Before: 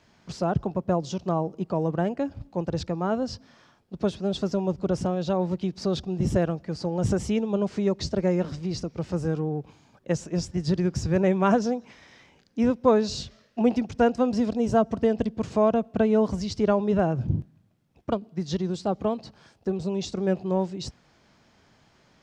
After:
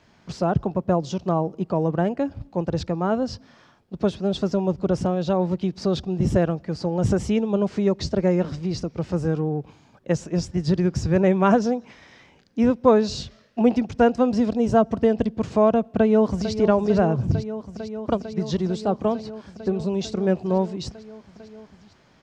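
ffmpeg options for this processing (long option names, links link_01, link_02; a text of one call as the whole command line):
ffmpeg -i in.wav -filter_complex "[0:a]asplit=2[link_01][link_02];[link_02]afade=type=in:start_time=15.8:duration=0.01,afade=type=out:start_time=16.53:duration=0.01,aecho=0:1:450|900|1350|1800|2250|2700|3150|3600|4050|4500|4950|5400:0.298538|0.253758|0.215694|0.18334|0.155839|0.132463|0.112594|0.0957045|0.0813488|0.0691465|0.0587745|0.0499584[link_03];[link_01][link_03]amix=inputs=2:normalize=0,highshelf=frequency=5600:gain=-5.5,volume=3.5dB" out.wav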